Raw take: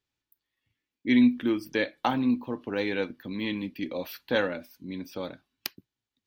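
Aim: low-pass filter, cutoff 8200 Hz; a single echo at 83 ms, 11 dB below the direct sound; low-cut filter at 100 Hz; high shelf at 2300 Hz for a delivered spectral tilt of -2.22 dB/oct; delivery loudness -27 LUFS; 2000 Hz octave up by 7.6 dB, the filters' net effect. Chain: HPF 100 Hz; LPF 8200 Hz; bell 2000 Hz +6.5 dB; high shelf 2300 Hz +5.5 dB; echo 83 ms -11 dB; gain -0.5 dB

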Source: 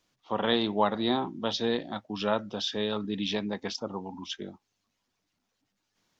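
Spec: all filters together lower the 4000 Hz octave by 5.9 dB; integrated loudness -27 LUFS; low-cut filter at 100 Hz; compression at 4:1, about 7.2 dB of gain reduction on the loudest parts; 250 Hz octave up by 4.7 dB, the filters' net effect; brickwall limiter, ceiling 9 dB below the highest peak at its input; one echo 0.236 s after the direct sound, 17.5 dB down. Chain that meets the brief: HPF 100 Hz; bell 250 Hz +6 dB; bell 4000 Hz -7 dB; compressor 4:1, threshold -27 dBFS; limiter -25.5 dBFS; echo 0.236 s -17.5 dB; gain +9 dB

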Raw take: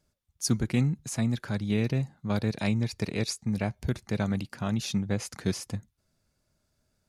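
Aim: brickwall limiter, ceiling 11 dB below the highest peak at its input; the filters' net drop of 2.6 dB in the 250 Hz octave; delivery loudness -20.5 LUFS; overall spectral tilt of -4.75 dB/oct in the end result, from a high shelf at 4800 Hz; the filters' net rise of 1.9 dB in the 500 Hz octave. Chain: bell 250 Hz -4 dB; bell 500 Hz +3.5 dB; high shelf 4800 Hz +4.5 dB; gain +13.5 dB; limiter -9 dBFS

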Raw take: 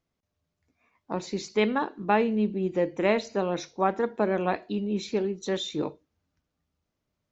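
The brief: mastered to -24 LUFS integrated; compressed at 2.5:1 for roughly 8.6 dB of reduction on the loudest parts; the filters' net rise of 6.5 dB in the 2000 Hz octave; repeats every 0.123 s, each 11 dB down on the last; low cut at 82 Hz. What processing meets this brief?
HPF 82 Hz; bell 2000 Hz +8 dB; compressor 2.5:1, threshold -29 dBFS; feedback echo 0.123 s, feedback 28%, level -11 dB; gain +8 dB

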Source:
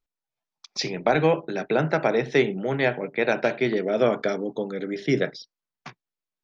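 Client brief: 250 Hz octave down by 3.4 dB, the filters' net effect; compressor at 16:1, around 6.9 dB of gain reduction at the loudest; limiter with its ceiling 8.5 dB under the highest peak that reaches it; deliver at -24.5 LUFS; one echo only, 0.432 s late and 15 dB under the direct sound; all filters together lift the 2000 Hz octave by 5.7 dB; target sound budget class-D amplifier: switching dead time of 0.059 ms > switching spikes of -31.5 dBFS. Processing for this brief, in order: bell 250 Hz -5 dB; bell 2000 Hz +7 dB; compressor 16:1, threshold -21 dBFS; limiter -17 dBFS; echo 0.432 s -15 dB; switching dead time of 0.059 ms; switching spikes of -31.5 dBFS; gain +5.5 dB

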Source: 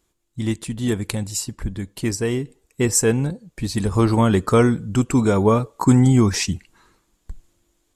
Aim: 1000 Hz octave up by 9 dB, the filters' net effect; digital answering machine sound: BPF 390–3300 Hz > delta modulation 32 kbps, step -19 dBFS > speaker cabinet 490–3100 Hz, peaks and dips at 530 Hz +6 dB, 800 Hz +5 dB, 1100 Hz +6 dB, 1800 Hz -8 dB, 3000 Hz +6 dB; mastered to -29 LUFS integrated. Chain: BPF 390–3300 Hz; bell 1000 Hz +5.5 dB; delta modulation 32 kbps, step -19 dBFS; speaker cabinet 490–3100 Hz, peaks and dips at 530 Hz +6 dB, 800 Hz +5 dB, 1100 Hz +6 dB, 1800 Hz -8 dB, 3000 Hz +6 dB; gain -7 dB

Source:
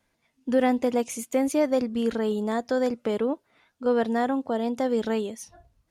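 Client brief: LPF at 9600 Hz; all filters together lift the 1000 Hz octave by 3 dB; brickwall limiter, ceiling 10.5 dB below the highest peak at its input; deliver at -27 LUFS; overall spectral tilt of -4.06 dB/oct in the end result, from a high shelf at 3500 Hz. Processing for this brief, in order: LPF 9600 Hz; bell 1000 Hz +4 dB; high shelf 3500 Hz +6.5 dB; gain +3 dB; limiter -17 dBFS

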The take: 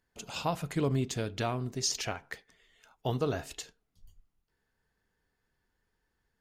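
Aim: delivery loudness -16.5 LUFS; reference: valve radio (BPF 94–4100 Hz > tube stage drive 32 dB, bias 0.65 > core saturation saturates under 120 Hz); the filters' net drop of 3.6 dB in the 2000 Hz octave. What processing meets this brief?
BPF 94–4100 Hz; bell 2000 Hz -4.5 dB; tube stage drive 32 dB, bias 0.65; core saturation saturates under 120 Hz; gain +26.5 dB

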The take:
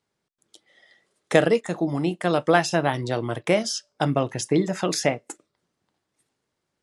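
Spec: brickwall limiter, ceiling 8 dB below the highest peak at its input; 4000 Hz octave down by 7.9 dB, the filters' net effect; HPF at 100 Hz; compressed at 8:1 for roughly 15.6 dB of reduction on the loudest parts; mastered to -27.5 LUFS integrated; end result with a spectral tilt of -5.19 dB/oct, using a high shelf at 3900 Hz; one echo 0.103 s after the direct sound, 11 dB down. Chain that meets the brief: HPF 100 Hz; high shelf 3900 Hz -4 dB; bell 4000 Hz -8.5 dB; compressor 8:1, threshold -28 dBFS; limiter -22.5 dBFS; echo 0.103 s -11 dB; gain +8 dB

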